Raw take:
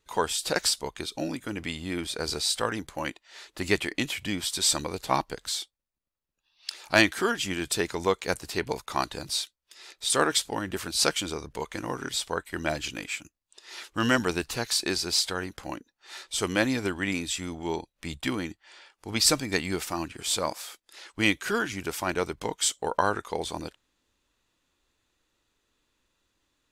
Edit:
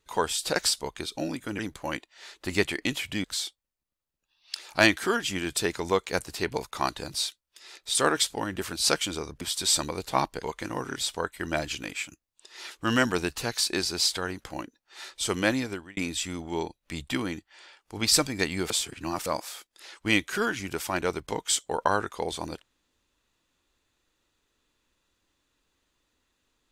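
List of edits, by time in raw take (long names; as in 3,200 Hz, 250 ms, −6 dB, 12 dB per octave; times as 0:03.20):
0:01.59–0:02.72: remove
0:04.37–0:05.39: move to 0:11.56
0:16.64–0:17.10: fade out
0:19.83–0:20.39: reverse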